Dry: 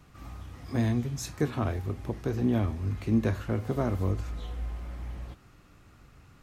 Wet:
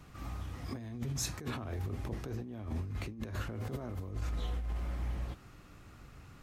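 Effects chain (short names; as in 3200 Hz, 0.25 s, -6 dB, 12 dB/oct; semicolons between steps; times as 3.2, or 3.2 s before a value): negative-ratio compressor -35 dBFS, ratio -1; gain -3 dB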